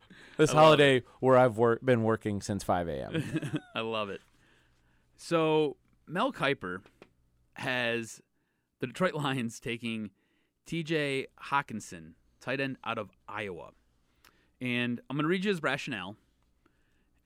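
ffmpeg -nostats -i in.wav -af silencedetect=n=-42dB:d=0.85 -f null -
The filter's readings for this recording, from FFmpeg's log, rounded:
silence_start: 4.17
silence_end: 5.21 | silence_duration: 1.04
silence_start: 16.13
silence_end: 17.26 | silence_duration: 1.13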